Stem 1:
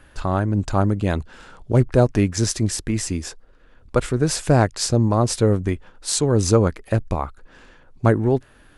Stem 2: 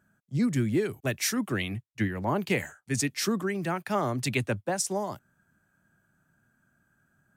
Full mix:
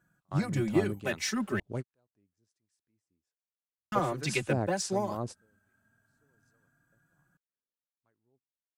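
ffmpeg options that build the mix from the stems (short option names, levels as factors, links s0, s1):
-filter_complex "[0:a]highpass=110,acrossover=split=820[s0][s1];[s0]aeval=exprs='val(0)*(1-0.7/2+0.7/2*cos(2*PI*1.3*n/s))':c=same[s2];[s1]aeval=exprs='val(0)*(1-0.7/2-0.7/2*cos(2*PI*1.3*n/s))':c=same[s3];[s2][s3]amix=inputs=2:normalize=0,volume=0.224[s4];[1:a]acrossover=split=6900[s5][s6];[s6]acompressor=threshold=0.00355:ratio=4:attack=1:release=60[s7];[s5][s7]amix=inputs=2:normalize=0,aeval=exprs='0.224*(cos(1*acos(clip(val(0)/0.224,-1,1)))-cos(1*PI/2))+0.00708*(cos(7*acos(clip(val(0)/0.224,-1,1)))-cos(7*PI/2))':c=same,asplit=2[s8][s9];[s9]adelay=3.7,afreqshift=0.28[s10];[s8][s10]amix=inputs=2:normalize=1,volume=1.26,asplit=3[s11][s12][s13];[s11]atrim=end=1.6,asetpts=PTS-STARTPTS,afade=t=out:st=1.596:d=0.004:c=hsin[s14];[s12]atrim=start=1.6:end=3.92,asetpts=PTS-STARTPTS,volume=0[s15];[s13]atrim=start=3.92,asetpts=PTS-STARTPTS,afade=t=in:d=0.004:c=hsin[s16];[s14][s15][s16]concat=n=3:v=0:a=1,asplit=2[s17][s18];[s18]apad=whole_len=386904[s19];[s4][s19]sidechaingate=range=0.01:threshold=0.00112:ratio=16:detection=peak[s20];[s20][s17]amix=inputs=2:normalize=0"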